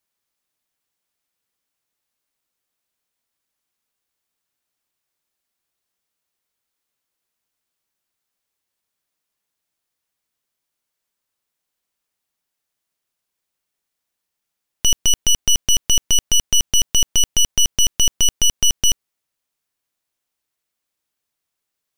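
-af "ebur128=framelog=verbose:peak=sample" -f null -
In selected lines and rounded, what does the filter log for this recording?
Integrated loudness:
  I:         -16.5 LUFS
  Threshold: -26.5 LUFS
Loudness range:
  LRA:         8.6 LU
  Threshold: -38.4 LUFS
  LRA low:   -24.7 LUFS
  LRA high:  -16.1 LUFS
Sample peak:
  Peak:       -6.6 dBFS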